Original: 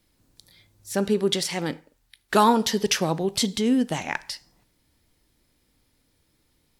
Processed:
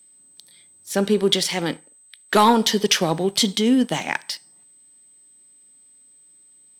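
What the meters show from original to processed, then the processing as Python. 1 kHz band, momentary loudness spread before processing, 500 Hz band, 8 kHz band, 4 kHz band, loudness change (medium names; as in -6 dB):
+3.0 dB, 13 LU, +3.5 dB, +4.0 dB, +6.5 dB, +3.5 dB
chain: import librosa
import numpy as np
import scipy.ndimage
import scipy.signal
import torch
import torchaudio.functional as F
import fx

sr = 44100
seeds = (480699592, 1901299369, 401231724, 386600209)

y = scipy.signal.sosfilt(scipy.signal.butter(4, 150.0, 'highpass', fs=sr, output='sos'), x)
y = fx.peak_eq(y, sr, hz=3100.0, db=5.0, octaves=0.68)
y = fx.notch(y, sr, hz=2700.0, q=16.0)
y = fx.leveller(y, sr, passes=1)
y = y + 10.0 ** (-50.0 / 20.0) * np.sin(2.0 * np.pi * 8200.0 * np.arange(len(y)) / sr)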